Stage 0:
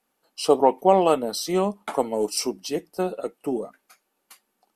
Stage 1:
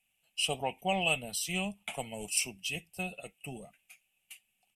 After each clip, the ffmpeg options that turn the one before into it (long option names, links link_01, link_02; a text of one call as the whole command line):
ffmpeg -i in.wav -af "firequalizer=gain_entry='entry(130,0);entry(280,-23);entry(440,-23);entry(710,-12);entry(1000,-23);entry(1500,-18);entry(2600,9);entry(4300,-14);entry(8100,0);entry(12000,-5)':delay=0.05:min_phase=1,volume=1.5dB" out.wav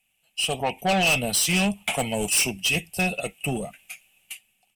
ffmpeg -i in.wav -af "dynaudnorm=framelen=220:gausssize=7:maxgain=11dB,asoftclip=type=tanh:threshold=-23dB,volume=6dB" out.wav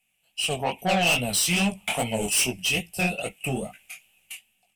ffmpeg -i in.wav -af "flanger=delay=16:depth=7.9:speed=2.4,volume=2dB" out.wav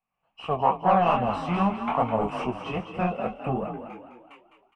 ffmpeg -i in.wav -filter_complex "[0:a]dynaudnorm=framelen=100:gausssize=3:maxgain=7.5dB,lowpass=frequency=1100:width_type=q:width=6.9,asplit=2[link_01][link_02];[link_02]asplit=5[link_03][link_04][link_05][link_06][link_07];[link_03]adelay=207,afreqshift=37,volume=-9dB[link_08];[link_04]adelay=414,afreqshift=74,volume=-15.7dB[link_09];[link_05]adelay=621,afreqshift=111,volume=-22.5dB[link_10];[link_06]adelay=828,afreqshift=148,volume=-29.2dB[link_11];[link_07]adelay=1035,afreqshift=185,volume=-36dB[link_12];[link_08][link_09][link_10][link_11][link_12]amix=inputs=5:normalize=0[link_13];[link_01][link_13]amix=inputs=2:normalize=0,volume=-8dB" out.wav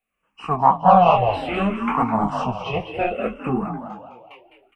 ffmpeg -i in.wav -filter_complex "[0:a]asplit=2[link_01][link_02];[link_02]afreqshift=-0.64[link_03];[link_01][link_03]amix=inputs=2:normalize=1,volume=8.5dB" out.wav